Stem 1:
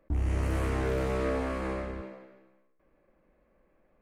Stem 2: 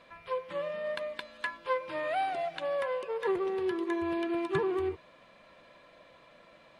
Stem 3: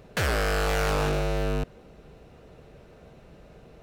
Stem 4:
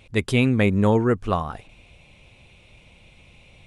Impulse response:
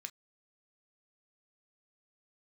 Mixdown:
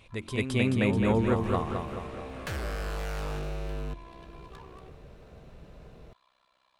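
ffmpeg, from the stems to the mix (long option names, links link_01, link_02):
-filter_complex "[0:a]adelay=900,volume=-8dB[link_01];[1:a]equalizer=frequency=125:width_type=o:width=1:gain=-10,equalizer=frequency=250:width_type=o:width=1:gain=-7,equalizer=frequency=500:width_type=o:width=1:gain=-11,equalizer=frequency=1000:width_type=o:width=1:gain=8,equalizer=frequency=2000:width_type=o:width=1:gain=-7,equalizer=frequency=4000:width_type=o:width=1:gain=6,equalizer=frequency=8000:width_type=o:width=1:gain=4,tremolo=f=64:d=0.889,asoftclip=type=tanh:threshold=-37.5dB,volume=-7.5dB[link_02];[2:a]lowshelf=frequency=120:gain=8.5,adelay=2300,volume=-2.5dB[link_03];[3:a]volume=-4dB,asplit=2[link_04][link_05];[link_05]volume=-3.5dB[link_06];[link_01][link_02]amix=inputs=2:normalize=0,alimiter=level_in=8.5dB:limit=-24dB:level=0:latency=1:release=457,volume=-8.5dB,volume=0dB[link_07];[link_03][link_04]amix=inputs=2:normalize=0,bandreject=frequency=45.02:width_type=h:width=4,bandreject=frequency=90.04:width_type=h:width=4,bandreject=frequency=135.06:width_type=h:width=4,bandreject=frequency=180.08:width_type=h:width=4,bandreject=frequency=225.1:width_type=h:width=4,bandreject=frequency=270.12:width_type=h:width=4,bandreject=frequency=315.14:width_type=h:width=4,bandreject=frequency=360.16:width_type=h:width=4,acompressor=threshold=-40dB:ratio=2,volume=0dB[link_08];[link_06]aecho=0:1:216|432|648|864|1080|1296|1512|1728:1|0.53|0.281|0.149|0.0789|0.0418|0.0222|0.0117[link_09];[link_07][link_08][link_09]amix=inputs=3:normalize=0"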